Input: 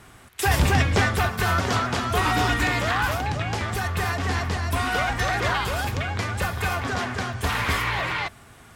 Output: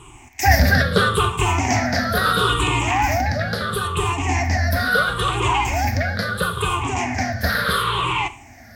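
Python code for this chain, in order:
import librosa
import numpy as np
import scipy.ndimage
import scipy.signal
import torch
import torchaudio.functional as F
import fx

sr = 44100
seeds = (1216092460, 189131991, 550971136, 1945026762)

y = fx.spec_ripple(x, sr, per_octave=0.67, drift_hz=-0.74, depth_db=21)
y = fx.rev_schroeder(y, sr, rt60_s=0.38, comb_ms=28, drr_db=13.5)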